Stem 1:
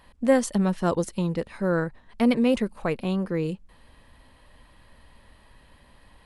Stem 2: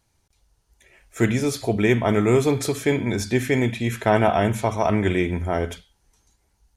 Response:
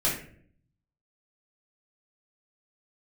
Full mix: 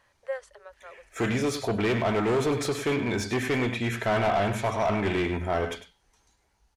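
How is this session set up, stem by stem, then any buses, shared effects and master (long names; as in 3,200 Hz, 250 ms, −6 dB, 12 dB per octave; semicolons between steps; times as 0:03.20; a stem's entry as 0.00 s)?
−5.5 dB, 0.00 s, no send, no echo send, Chebyshev high-pass with heavy ripple 400 Hz, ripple 9 dB; automatic ducking −23 dB, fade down 1.70 s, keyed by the second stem
−0.5 dB, 0.00 s, no send, echo send −12.5 dB, hard clipping −19 dBFS, distortion −9 dB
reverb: not used
echo: single-tap delay 101 ms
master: mid-hump overdrive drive 8 dB, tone 2,700 Hz, clips at −17 dBFS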